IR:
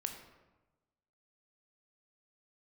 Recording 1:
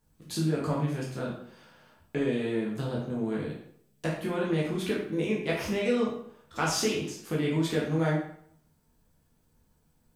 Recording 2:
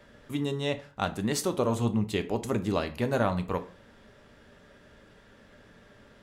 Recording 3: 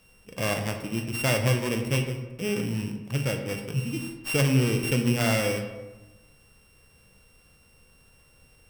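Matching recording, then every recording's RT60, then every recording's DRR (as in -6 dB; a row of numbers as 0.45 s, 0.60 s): 3; 0.65 s, 0.40 s, 1.1 s; -4.5 dB, 8.5 dB, 4.5 dB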